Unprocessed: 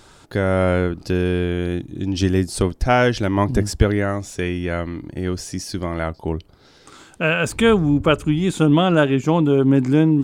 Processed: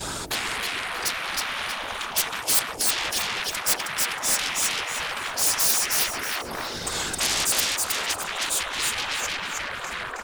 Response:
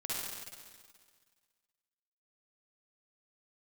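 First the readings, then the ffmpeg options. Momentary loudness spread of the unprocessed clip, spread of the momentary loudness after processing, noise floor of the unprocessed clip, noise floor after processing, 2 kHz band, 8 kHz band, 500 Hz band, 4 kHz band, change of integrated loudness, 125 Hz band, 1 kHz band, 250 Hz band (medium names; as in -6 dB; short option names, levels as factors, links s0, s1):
11 LU, 8 LU, -50 dBFS, -34 dBFS, -1.0 dB, +12.5 dB, -17.5 dB, +6.0 dB, -4.5 dB, -25.0 dB, -4.5 dB, -24.0 dB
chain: -af "acompressor=threshold=0.0501:ratio=16,afftfilt=real='hypot(re,im)*cos(2*PI*random(0))':imag='hypot(re,im)*sin(2*PI*random(1))':win_size=512:overlap=0.75,acontrast=69,bandreject=f=60:t=h:w=6,bandreject=f=120:t=h:w=6,bandreject=f=180:t=h:w=6,bandreject=f=240:t=h:w=6,bandreject=f=300:t=h:w=6,bandreject=f=360:t=h:w=6,bandreject=f=420:t=h:w=6,bandreject=f=480:t=h:w=6,bandreject=f=540:t=h:w=6,adynamicequalizer=threshold=0.00355:dfrequency=1100:dqfactor=3.4:tfrequency=1100:tqfactor=3.4:attack=5:release=100:ratio=0.375:range=1.5:mode=cutabove:tftype=bell,aeval=exprs='0.133*sin(PI/2*5.62*val(0)/0.133)':c=same,aecho=1:1:317|634|951|1268:0.708|0.212|0.0637|0.0191,afftfilt=real='re*lt(hypot(re,im),0.2)':imag='im*lt(hypot(re,im),0.2)':win_size=1024:overlap=0.75,highshelf=f=7400:g=9,agate=range=0.282:threshold=0.02:ratio=16:detection=peak,volume=0.708"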